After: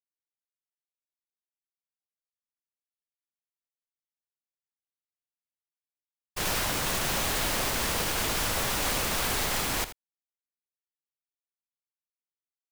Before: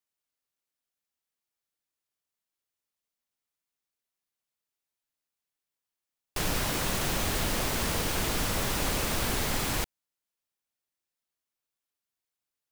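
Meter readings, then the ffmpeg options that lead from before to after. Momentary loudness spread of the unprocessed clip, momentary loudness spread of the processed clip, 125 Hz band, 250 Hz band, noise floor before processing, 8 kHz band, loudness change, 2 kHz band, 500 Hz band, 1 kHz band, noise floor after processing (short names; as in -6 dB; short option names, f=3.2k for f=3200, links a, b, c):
3 LU, 3 LU, -3.5 dB, -2.5 dB, under -85 dBFS, +2.5 dB, +1.5 dB, +2.5 dB, 0.0 dB, +2.0 dB, under -85 dBFS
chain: -filter_complex "[0:a]agate=range=-33dB:threshold=-26dB:ratio=3:detection=peak,acrossover=split=510[a][b];[a]asoftclip=type=tanh:threshold=-36.5dB[c];[c][b]amix=inputs=2:normalize=0,aecho=1:1:81:0.224,volume=4dB"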